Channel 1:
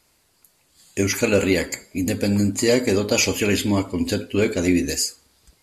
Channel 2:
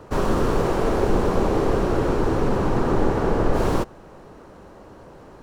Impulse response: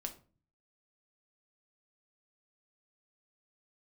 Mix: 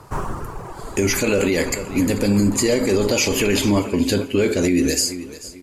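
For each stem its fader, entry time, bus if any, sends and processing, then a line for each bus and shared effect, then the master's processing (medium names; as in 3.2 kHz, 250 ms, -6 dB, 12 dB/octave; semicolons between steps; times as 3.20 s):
+3.0 dB, 0.00 s, send -7.5 dB, echo send -16.5 dB, none
+0.5 dB, 0.00 s, no send, no echo send, reverb removal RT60 1.9 s; ten-band graphic EQ 125 Hz +5 dB, 250 Hz -6 dB, 500 Hz -8 dB, 1 kHz +6 dB, 4 kHz -10 dB, 8 kHz +5 dB; auto duck -8 dB, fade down 0.55 s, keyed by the first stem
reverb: on, RT60 0.40 s, pre-delay 5 ms
echo: feedback delay 439 ms, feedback 30%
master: peaking EQ 390 Hz +2.5 dB; peak limiter -9 dBFS, peak gain reduction 9.5 dB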